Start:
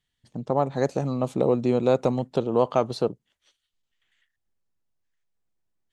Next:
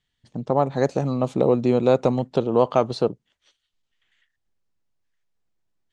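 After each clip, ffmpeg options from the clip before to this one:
-af "lowpass=7200,volume=1.41"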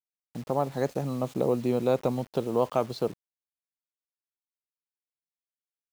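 -af "acrusher=bits=6:mix=0:aa=0.000001,volume=0.447"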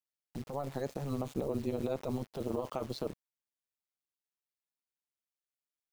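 -af "alimiter=limit=0.075:level=0:latency=1:release=10,tremolo=f=140:d=0.824"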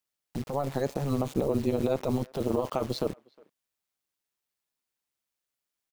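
-filter_complex "[0:a]asplit=2[s0][s1];[s1]adelay=360,highpass=300,lowpass=3400,asoftclip=type=hard:threshold=0.0282,volume=0.0562[s2];[s0][s2]amix=inputs=2:normalize=0,volume=2.37"

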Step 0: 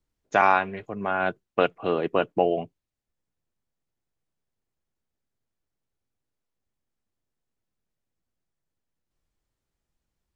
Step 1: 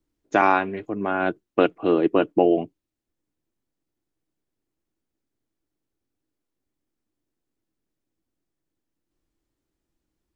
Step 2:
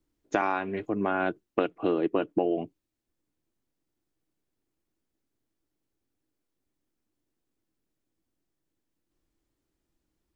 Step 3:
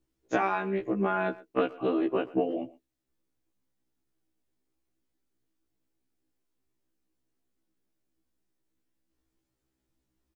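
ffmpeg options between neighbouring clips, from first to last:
-af "equalizer=f=310:w=2.4:g=13.5"
-af "acompressor=threshold=0.0794:ratio=6"
-filter_complex "[0:a]asplit=2[s0][s1];[s1]adelay=120,highpass=300,lowpass=3400,asoftclip=type=hard:threshold=0.126,volume=0.112[s2];[s0][s2]amix=inputs=2:normalize=0,afftfilt=real='re*1.73*eq(mod(b,3),0)':imag='im*1.73*eq(mod(b,3),0)':win_size=2048:overlap=0.75,volume=1.19"

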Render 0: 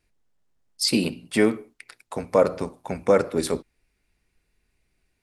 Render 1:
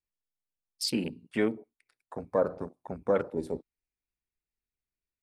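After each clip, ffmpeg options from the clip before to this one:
-af "afwtdn=0.0251,volume=0.398"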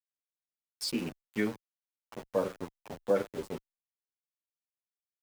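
-filter_complex "[0:a]aeval=exprs='val(0)*gte(abs(val(0)),0.015)':c=same,asplit=2[s0][s1];[s1]adelay=8.8,afreqshift=-1.1[s2];[s0][s2]amix=inputs=2:normalize=1"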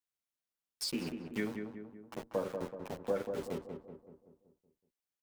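-filter_complex "[0:a]acompressor=threshold=0.0141:ratio=2,asplit=2[s0][s1];[s1]adelay=189,lowpass=f=1400:p=1,volume=0.531,asplit=2[s2][s3];[s3]adelay=189,lowpass=f=1400:p=1,volume=0.53,asplit=2[s4][s5];[s5]adelay=189,lowpass=f=1400:p=1,volume=0.53,asplit=2[s6][s7];[s7]adelay=189,lowpass=f=1400:p=1,volume=0.53,asplit=2[s8][s9];[s9]adelay=189,lowpass=f=1400:p=1,volume=0.53,asplit=2[s10][s11];[s11]adelay=189,lowpass=f=1400:p=1,volume=0.53,asplit=2[s12][s13];[s13]adelay=189,lowpass=f=1400:p=1,volume=0.53[s14];[s2][s4][s6][s8][s10][s12][s14]amix=inputs=7:normalize=0[s15];[s0][s15]amix=inputs=2:normalize=0,volume=1.12"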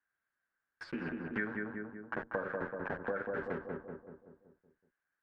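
-af "acompressor=threshold=0.0112:ratio=6,lowpass=f=1600:t=q:w=9.6,volume=1.58"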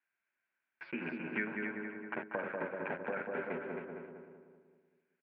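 -filter_complex "[0:a]highpass=250,equalizer=f=290:t=q:w=4:g=-5,equalizer=f=480:t=q:w=4:g=-8,equalizer=f=760:t=q:w=4:g=-4,equalizer=f=1200:t=q:w=4:g=-9,equalizer=f=1700:t=q:w=4:g=-7,equalizer=f=2400:t=q:w=4:g=10,lowpass=f=2800:w=0.5412,lowpass=f=2800:w=1.3066,asplit=2[s0][s1];[s1]aecho=0:1:268|536|804:0.501|0.12|0.0289[s2];[s0][s2]amix=inputs=2:normalize=0,volume=1.58"

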